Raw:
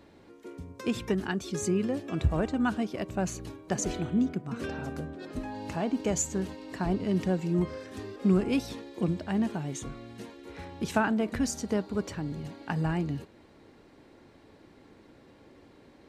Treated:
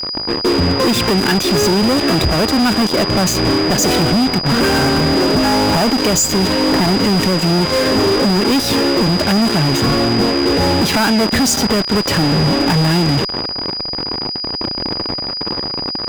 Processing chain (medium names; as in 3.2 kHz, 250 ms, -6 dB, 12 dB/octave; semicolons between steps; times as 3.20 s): level-controlled noise filter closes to 360 Hz, open at -25 dBFS; high-pass 130 Hz 6 dB/octave; compression 10:1, threshold -41 dBFS, peak gain reduction 20.5 dB; fuzz box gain 60 dB, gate -54 dBFS; whistle 4.9 kHz -22 dBFS; trim +1.5 dB